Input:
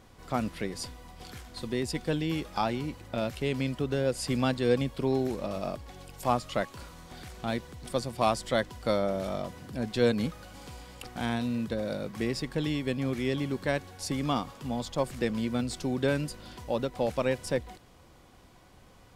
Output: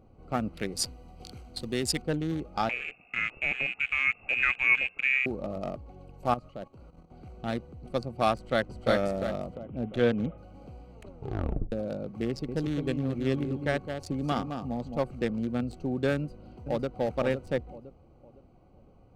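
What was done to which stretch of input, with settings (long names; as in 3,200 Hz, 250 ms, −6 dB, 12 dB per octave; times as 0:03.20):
0:00.57–0:02.02: high-shelf EQ 2,500 Hz +11.5 dB
0:02.69–0:05.26: voice inversion scrambler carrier 2,700 Hz
0:06.34–0:07.23: output level in coarse steps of 12 dB
0:08.34–0:08.87: delay throw 350 ms, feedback 50%, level −1.5 dB
0:09.55–0:10.38: bad sample-rate conversion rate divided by 6×, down none, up filtered
0:10.90: tape stop 0.82 s
0:12.27–0:14.99: single-tap delay 214 ms −6 dB
0:16.15–0:16.94: delay throw 510 ms, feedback 35%, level −6.5 dB
whole clip: adaptive Wiener filter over 25 samples; notch filter 1,000 Hz, Q 6.4; dynamic equaliser 1,400 Hz, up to +4 dB, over −43 dBFS, Q 1.1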